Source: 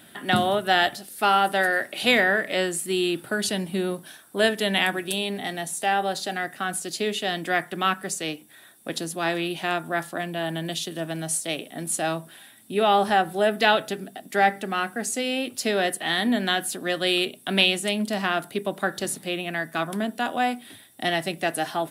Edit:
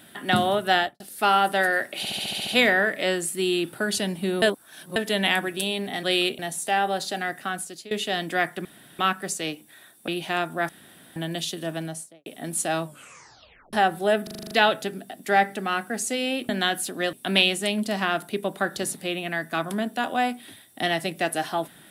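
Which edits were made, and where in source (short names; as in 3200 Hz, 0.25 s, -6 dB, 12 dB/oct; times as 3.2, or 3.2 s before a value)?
0.74–1 studio fade out
1.98 stutter 0.07 s, 8 plays
3.93–4.47 reverse
6.58–7.06 fade out, to -19.5 dB
7.8 insert room tone 0.34 s
8.89–9.42 cut
10.03–10.5 room tone
11.09–11.6 studio fade out
12.19 tape stop 0.88 s
13.57 stutter 0.04 s, 8 plays
15.55–16.35 cut
16.99–17.35 move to 5.54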